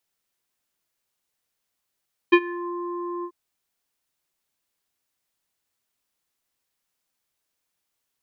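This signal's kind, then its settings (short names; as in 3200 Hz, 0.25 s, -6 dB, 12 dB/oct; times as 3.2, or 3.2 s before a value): synth note square F4 24 dB/oct, low-pass 1000 Hz, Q 2.3, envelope 1.5 oct, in 0.39 s, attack 14 ms, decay 0.06 s, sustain -20.5 dB, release 0.07 s, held 0.92 s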